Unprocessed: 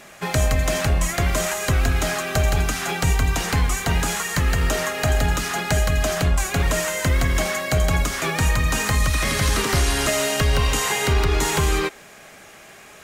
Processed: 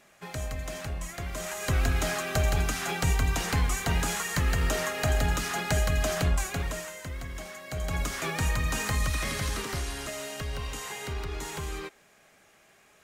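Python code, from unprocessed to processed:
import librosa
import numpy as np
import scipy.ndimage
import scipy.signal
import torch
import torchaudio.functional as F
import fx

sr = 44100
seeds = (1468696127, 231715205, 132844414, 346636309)

y = fx.gain(x, sr, db=fx.line((1.3, -15.0), (1.76, -6.0), (6.33, -6.0), (7.04, -18.0), (7.6, -18.0), (8.06, -8.0), (9.11, -8.0), (10.06, -15.5)))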